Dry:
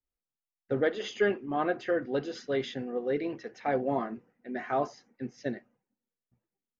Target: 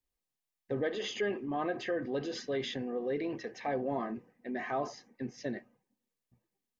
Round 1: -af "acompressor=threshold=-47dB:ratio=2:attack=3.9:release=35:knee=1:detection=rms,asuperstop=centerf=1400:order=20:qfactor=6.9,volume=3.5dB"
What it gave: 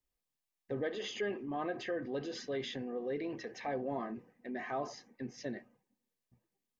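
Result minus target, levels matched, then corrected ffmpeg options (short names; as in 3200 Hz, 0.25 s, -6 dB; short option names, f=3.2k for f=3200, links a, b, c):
compressor: peak gain reduction +3.5 dB
-af "acompressor=threshold=-40dB:ratio=2:attack=3.9:release=35:knee=1:detection=rms,asuperstop=centerf=1400:order=20:qfactor=6.9,volume=3.5dB"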